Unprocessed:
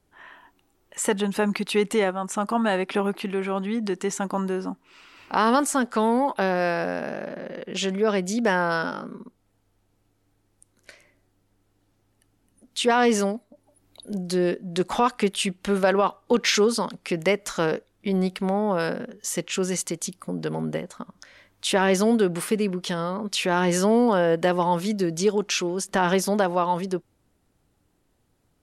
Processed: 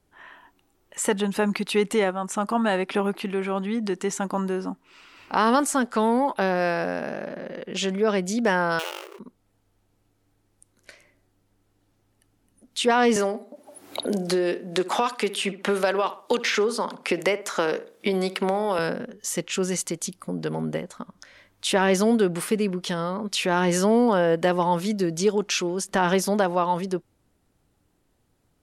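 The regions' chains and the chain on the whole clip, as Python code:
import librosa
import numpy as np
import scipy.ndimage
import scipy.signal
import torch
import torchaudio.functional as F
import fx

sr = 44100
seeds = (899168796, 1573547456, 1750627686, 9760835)

y = fx.chain(x, sr, fx.dead_time(dead_ms=0.29),
    fx.brickwall_highpass(low_hz=320.0),
    fx.peak_eq(hz=2800.0, db=5.0, octaves=0.29), at=(8.79, 9.19))
y = fx.chain(y, sr, fx.highpass(hz=300.0, slope=12),
    fx.echo_filtered(ms=63, feedback_pct=30, hz=2100.0, wet_db=-14.5),
    fx.band_squash(depth_pct=100), at=(13.16, 18.79))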